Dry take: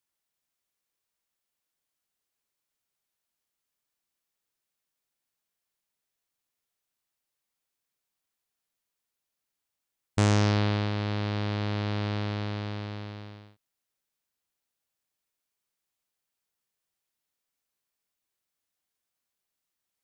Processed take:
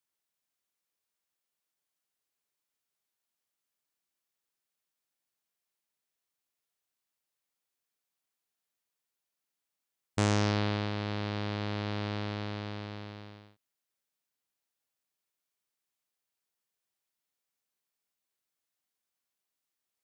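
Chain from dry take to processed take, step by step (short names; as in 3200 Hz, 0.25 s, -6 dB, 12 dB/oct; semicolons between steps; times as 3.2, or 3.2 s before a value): low shelf 81 Hz -9.5 dB; gain -2.5 dB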